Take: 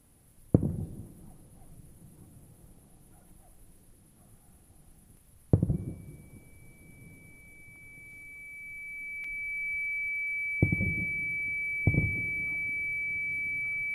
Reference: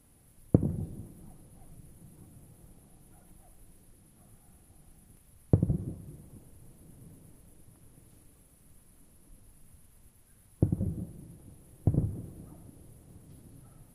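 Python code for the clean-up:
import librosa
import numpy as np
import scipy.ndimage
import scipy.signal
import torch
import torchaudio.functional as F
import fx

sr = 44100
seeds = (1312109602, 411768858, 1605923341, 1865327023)

y = fx.notch(x, sr, hz=2300.0, q=30.0)
y = fx.fix_interpolate(y, sr, at_s=(9.24,), length_ms=3.6)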